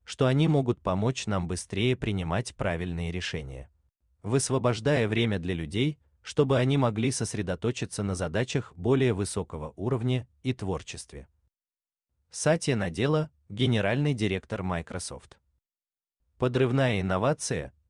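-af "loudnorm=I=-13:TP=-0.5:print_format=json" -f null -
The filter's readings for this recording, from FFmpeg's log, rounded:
"input_i" : "-28.0",
"input_tp" : "-11.5",
"input_lra" : "3.0",
"input_thresh" : "-38.6",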